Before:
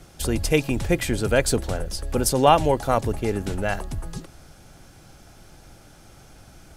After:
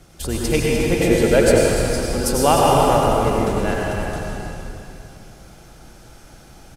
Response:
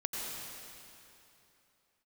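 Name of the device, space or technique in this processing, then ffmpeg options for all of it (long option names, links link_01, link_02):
cave: -filter_complex "[0:a]aecho=1:1:301:0.335[link_01];[1:a]atrim=start_sample=2205[link_02];[link_01][link_02]afir=irnorm=-1:irlink=0,asettb=1/sr,asplit=3[link_03][link_04][link_05];[link_03]atrim=end=1.004[link_06];[link_04]atrim=start=1:end=1.68,asetpts=PTS-STARTPTS,afade=type=in:duration=0.004:curve=qsin,afade=type=out:start_time=0.676:duration=0.004:curve=qsin,equalizer=frequency=520:width=1.2:gain=6[link_07];[link_05]atrim=start=1.676[link_08];[link_06][link_07]acrossfade=duration=0.004:curve1=hsin:curve2=qsin[link_09];[link_09][link_08]acrossfade=duration=0.004:curve1=qsin:curve2=hsin"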